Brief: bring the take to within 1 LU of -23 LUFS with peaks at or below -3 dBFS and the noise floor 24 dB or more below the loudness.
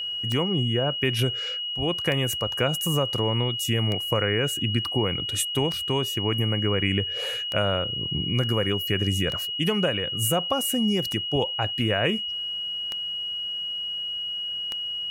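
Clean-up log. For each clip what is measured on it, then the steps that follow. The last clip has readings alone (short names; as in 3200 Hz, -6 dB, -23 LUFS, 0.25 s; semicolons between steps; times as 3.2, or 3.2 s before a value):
clicks 9; steady tone 2900 Hz; tone level -28 dBFS; loudness -25.0 LUFS; peak -8.5 dBFS; loudness target -23.0 LUFS
-> de-click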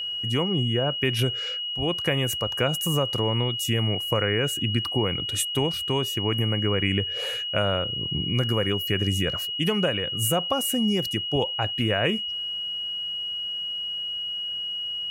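clicks 0; steady tone 2900 Hz; tone level -28 dBFS
-> notch 2900 Hz, Q 30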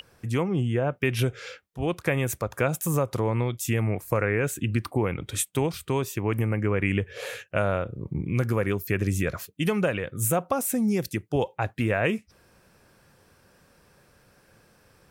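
steady tone none; loudness -27.0 LUFS; peak -9.5 dBFS; loudness target -23.0 LUFS
-> gain +4 dB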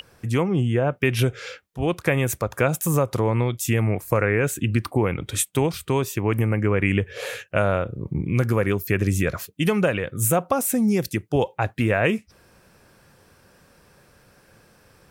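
loudness -23.0 LUFS; peak -5.5 dBFS; noise floor -57 dBFS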